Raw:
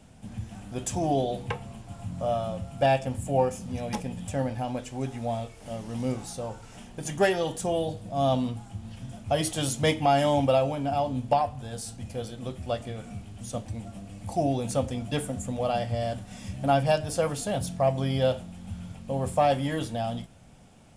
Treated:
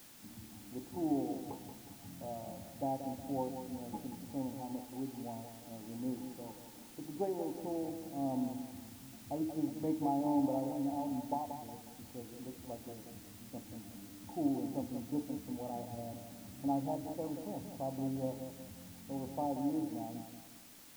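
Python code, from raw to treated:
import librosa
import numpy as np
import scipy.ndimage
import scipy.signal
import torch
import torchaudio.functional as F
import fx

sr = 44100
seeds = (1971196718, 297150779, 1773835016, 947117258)

y = fx.formant_cascade(x, sr, vowel='u')
y = fx.low_shelf(y, sr, hz=300.0, db=-9.0)
y = fx.echo_feedback(y, sr, ms=181, feedback_pct=41, wet_db=-8.5)
y = fx.quant_dither(y, sr, seeds[0], bits=10, dither='triangular')
y = y * librosa.db_to_amplitude(3.0)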